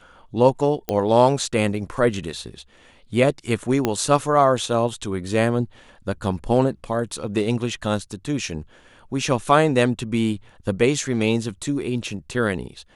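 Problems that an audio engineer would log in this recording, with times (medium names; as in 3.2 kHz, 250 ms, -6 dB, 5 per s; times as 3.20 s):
0.89 s: pop -10 dBFS
3.85 s: pop -6 dBFS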